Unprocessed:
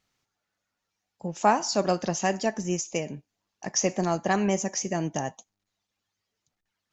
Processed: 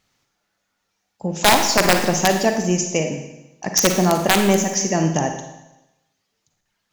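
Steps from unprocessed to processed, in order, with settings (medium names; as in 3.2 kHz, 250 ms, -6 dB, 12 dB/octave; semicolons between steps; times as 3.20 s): integer overflow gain 13 dB; Schroeder reverb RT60 0.96 s, DRR 5 dB; trim +8 dB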